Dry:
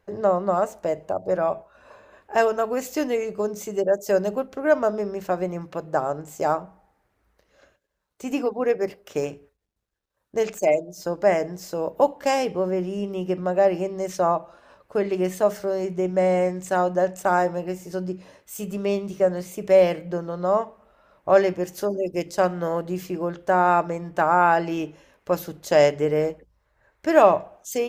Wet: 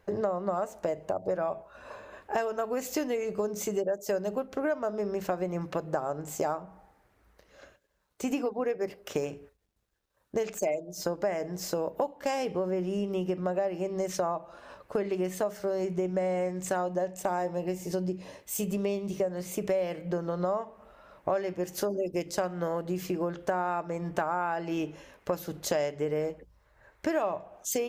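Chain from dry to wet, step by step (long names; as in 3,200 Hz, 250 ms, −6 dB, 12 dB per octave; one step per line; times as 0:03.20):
0:16.86–0:19.30: parametric band 1,400 Hz −7.5 dB 0.41 octaves
downward compressor 6 to 1, threshold −31 dBFS, peak gain reduction 20 dB
level +3.5 dB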